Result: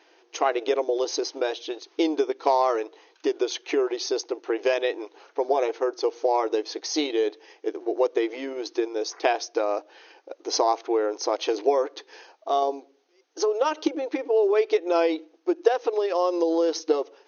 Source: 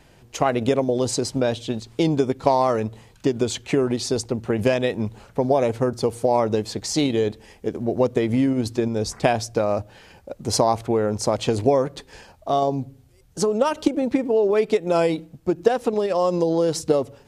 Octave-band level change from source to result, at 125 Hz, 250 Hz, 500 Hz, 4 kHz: below −40 dB, −6.5 dB, −2.5 dB, −1.5 dB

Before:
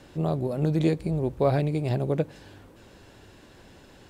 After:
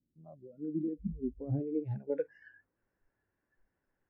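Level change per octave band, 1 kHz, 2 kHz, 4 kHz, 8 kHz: −24.5 dB, −16.0 dB, below −35 dB, can't be measured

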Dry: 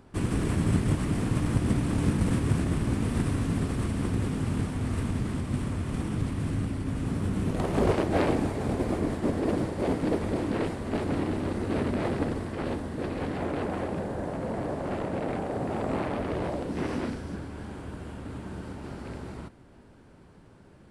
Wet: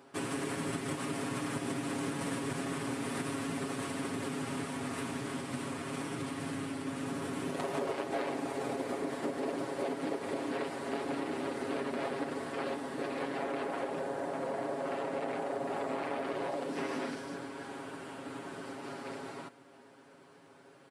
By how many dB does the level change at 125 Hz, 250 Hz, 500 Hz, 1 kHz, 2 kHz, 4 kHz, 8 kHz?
−16.5, −8.0, −4.5, −2.5, −1.5, −1.0, −0.5 decibels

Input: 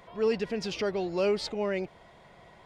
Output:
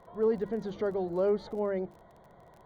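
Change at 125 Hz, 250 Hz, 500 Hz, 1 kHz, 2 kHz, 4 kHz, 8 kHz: −1.0 dB, −1.0 dB, −0.5 dB, −2.0 dB, −10.5 dB, below −15 dB, below −15 dB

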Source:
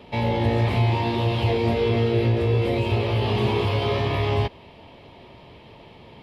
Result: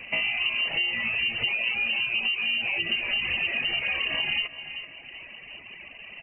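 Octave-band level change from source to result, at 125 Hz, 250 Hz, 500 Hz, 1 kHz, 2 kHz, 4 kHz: −29.0, −20.0, −21.0, −15.0, +9.0, +6.5 decibels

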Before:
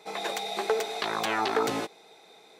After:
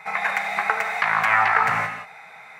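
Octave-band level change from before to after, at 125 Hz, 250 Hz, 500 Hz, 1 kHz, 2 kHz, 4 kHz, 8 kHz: +7.5, −6.5, −4.5, +9.5, +14.5, −4.0, −4.0 decibels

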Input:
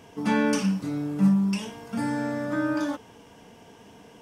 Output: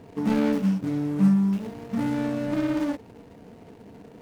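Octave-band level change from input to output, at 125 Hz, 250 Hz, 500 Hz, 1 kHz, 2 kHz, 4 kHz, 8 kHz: +1.5 dB, +1.5 dB, 0.0 dB, −4.0 dB, −6.0 dB, −5.0 dB, can't be measured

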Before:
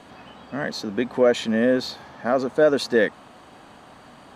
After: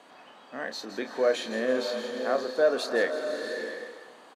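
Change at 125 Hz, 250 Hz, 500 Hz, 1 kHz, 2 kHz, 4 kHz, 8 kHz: below −15 dB, −11.0 dB, −5.0 dB, −5.0 dB, −4.0 dB, −4.0 dB, −4.0 dB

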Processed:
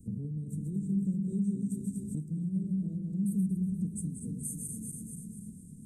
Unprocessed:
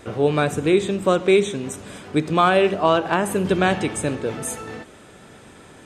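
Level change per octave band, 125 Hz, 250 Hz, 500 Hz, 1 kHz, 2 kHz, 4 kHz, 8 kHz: −5.5 dB, −7.5 dB, −33.0 dB, below −40 dB, below −40 dB, below −40 dB, −9.0 dB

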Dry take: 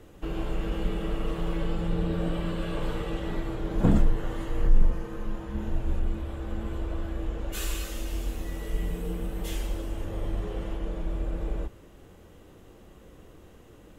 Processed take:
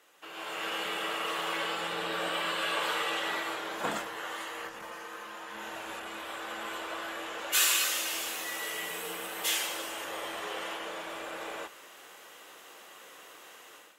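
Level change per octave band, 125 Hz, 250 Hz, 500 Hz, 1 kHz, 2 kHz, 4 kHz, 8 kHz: −26.5, −13.5, −3.0, +7.0, +11.0, +12.0, +12.0 decibels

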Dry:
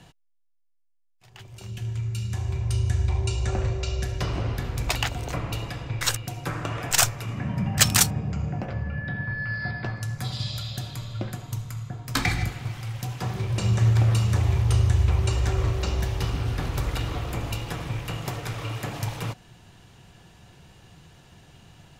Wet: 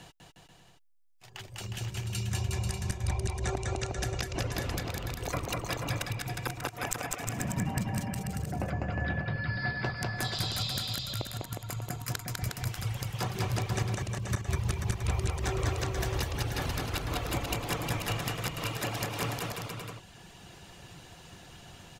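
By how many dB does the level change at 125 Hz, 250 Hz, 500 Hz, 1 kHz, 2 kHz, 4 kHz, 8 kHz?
−8.0, −3.5, −2.0, −2.5, −4.0, −5.0, −9.5 decibels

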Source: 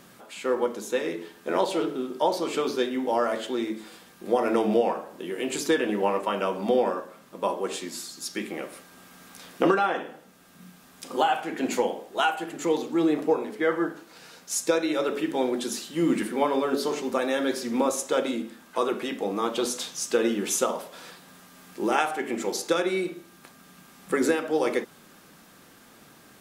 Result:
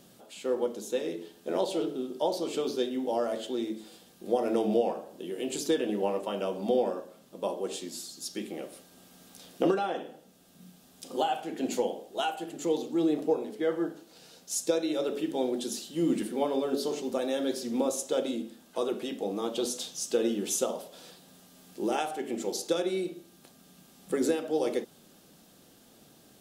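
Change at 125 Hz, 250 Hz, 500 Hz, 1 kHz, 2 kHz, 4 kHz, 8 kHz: −3.5, −3.5, −3.5, −7.5, −11.5, −4.0, −3.5 decibels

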